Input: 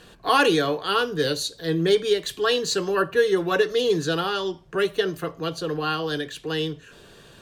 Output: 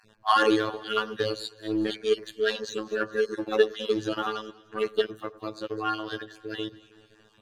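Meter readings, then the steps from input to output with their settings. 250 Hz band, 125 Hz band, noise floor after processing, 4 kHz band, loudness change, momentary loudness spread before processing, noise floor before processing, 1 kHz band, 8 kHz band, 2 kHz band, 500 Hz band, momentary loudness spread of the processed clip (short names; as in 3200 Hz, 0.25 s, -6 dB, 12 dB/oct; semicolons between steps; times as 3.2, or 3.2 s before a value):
-3.5 dB, -12.0 dB, -60 dBFS, -7.0 dB, -5.0 dB, 8 LU, -50 dBFS, -3.0 dB, -12.0 dB, -5.0 dB, -5.0 dB, 13 LU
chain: random spectral dropouts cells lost 36%; in parallel at -4 dB: soft clip -23.5 dBFS, distortion -9 dB; on the sum: robotiser 108 Hz; high shelf 7800 Hz -10.5 dB; on a send: echo with dull and thin repeats by turns 0.105 s, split 1500 Hz, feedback 72%, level -13.5 dB; on the sum: dynamic EQ 1200 Hz, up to +4 dB, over -44 dBFS, Q 6.7; upward expander 1.5:1, over -37 dBFS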